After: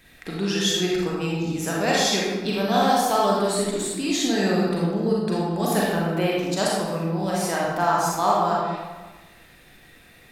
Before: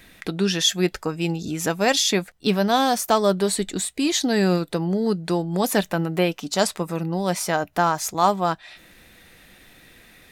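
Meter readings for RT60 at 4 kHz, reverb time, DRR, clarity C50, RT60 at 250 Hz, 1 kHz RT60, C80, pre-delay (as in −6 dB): 0.80 s, 1.3 s, −5.0 dB, −2.0 dB, 1.5 s, 1.3 s, 1.0 dB, 34 ms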